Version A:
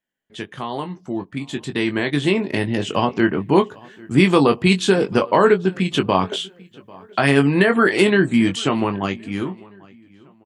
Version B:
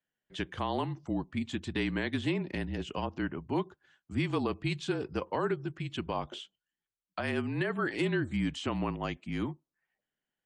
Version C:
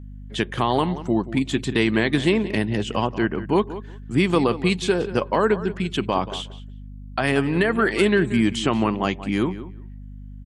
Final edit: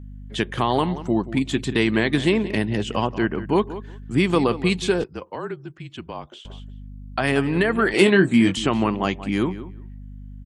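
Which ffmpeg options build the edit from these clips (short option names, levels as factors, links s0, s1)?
-filter_complex "[2:a]asplit=3[s0][s1][s2];[s0]atrim=end=5.042[s3];[1:a]atrim=start=5.038:end=6.452[s4];[s1]atrim=start=6.448:end=7.942[s5];[0:a]atrim=start=7.938:end=8.572[s6];[s2]atrim=start=8.568[s7];[s3][s4]acrossfade=d=0.004:c1=hsin:c2=hsin[s8];[s8][s5]acrossfade=d=0.004:c1=hsin:c2=hsin[s9];[s9][s6]acrossfade=d=0.004:c1=hsin:c2=hsin[s10];[s10][s7]acrossfade=d=0.004:c1=hsin:c2=hsin"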